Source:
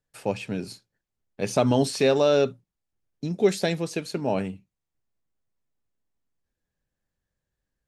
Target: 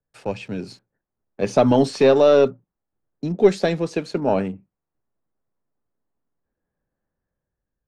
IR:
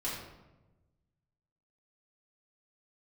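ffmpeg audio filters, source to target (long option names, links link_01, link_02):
-filter_complex "[0:a]aeval=exprs='0.447*(cos(1*acos(clip(val(0)/0.447,-1,1)))-cos(1*PI/2))+0.0282*(cos(4*acos(clip(val(0)/0.447,-1,1)))-cos(4*PI/2))':channel_layout=same,acrossover=split=170|1700[link_01][link_02][link_03];[link_02]dynaudnorm=framelen=170:gausssize=9:maxgain=7dB[link_04];[link_03]aeval=exprs='val(0)*gte(abs(val(0)),0.00178)':channel_layout=same[link_05];[link_01][link_04][link_05]amix=inputs=3:normalize=0,lowpass=6500"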